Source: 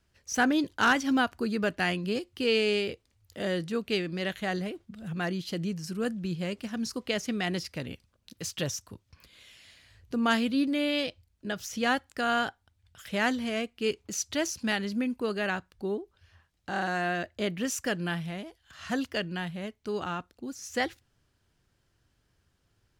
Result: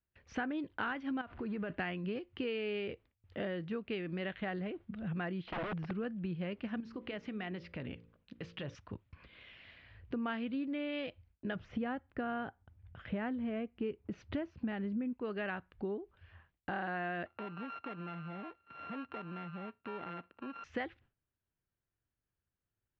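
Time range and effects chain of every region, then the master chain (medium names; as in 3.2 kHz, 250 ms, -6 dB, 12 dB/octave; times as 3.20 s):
1.21–1.70 s: jump at every zero crossing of -42.5 dBFS + distance through air 110 m + compression, threshold -33 dBFS
5.46–5.91 s: integer overflow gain 30.5 dB + distance through air 140 m
6.80–8.75 s: compression 4:1, threshold -39 dBFS + de-hum 57.11 Hz, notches 10
11.55–15.13 s: high-pass 130 Hz 6 dB/octave + tilt EQ -3.5 dB/octave
17.26–20.64 s: sorted samples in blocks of 32 samples + compression 4:1, threshold -42 dBFS + band-pass 160–4100 Hz
whole clip: low-pass 2.8 kHz 24 dB/octave; gate with hold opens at -58 dBFS; compression 6:1, threshold -37 dBFS; trim +1.5 dB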